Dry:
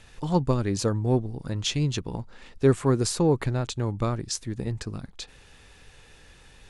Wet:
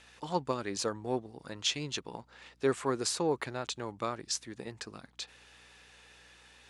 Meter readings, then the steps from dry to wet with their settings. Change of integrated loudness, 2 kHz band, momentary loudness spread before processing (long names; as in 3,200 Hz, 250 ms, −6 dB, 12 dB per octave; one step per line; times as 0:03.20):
−8.5 dB, −2.0 dB, 15 LU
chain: meter weighting curve A
mains hum 60 Hz, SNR 31 dB
level −3 dB